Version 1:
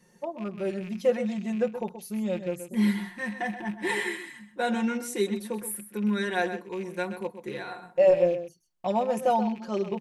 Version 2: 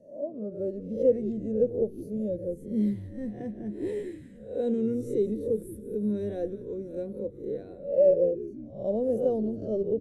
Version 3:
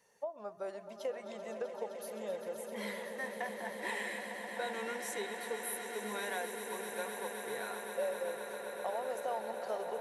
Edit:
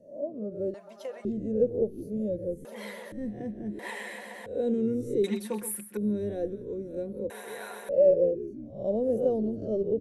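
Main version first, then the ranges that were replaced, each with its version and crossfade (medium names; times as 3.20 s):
2
0.74–1.25 s: from 3
2.65–3.12 s: from 3
3.79–4.46 s: from 3
5.24–5.97 s: from 1
7.30–7.89 s: from 3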